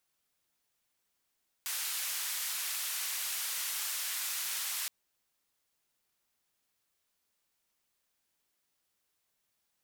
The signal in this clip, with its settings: noise band 1.3–16 kHz, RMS -36 dBFS 3.22 s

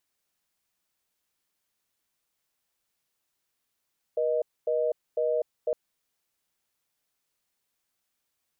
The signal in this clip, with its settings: call progress tone reorder tone, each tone -26 dBFS 1.56 s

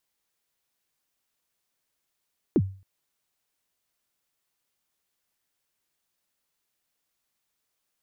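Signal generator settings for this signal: kick drum length 0.27 s, from 410 Hz, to 96 Hz, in 50 ms, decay 0.39 s, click off, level -14 dB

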